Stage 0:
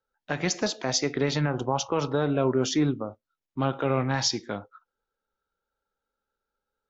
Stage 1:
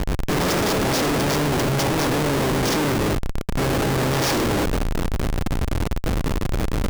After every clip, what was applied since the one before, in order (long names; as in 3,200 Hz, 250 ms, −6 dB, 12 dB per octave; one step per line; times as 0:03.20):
compressor on every frequency bin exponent 0.2
comparator with hysteresis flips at −21 dBFS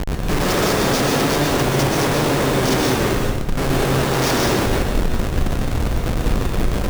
dense smooth reverb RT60 0.89 s, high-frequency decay 0.9×, pre-delay 110 ms, DRR −0.5 dB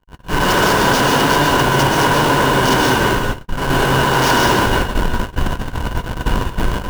hollow resonant body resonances 990/1,500/2,900 Hz, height 13 dB, ringing for 25 ms
noise gate −17 dBFS, range −52 dB
level +1.5 dB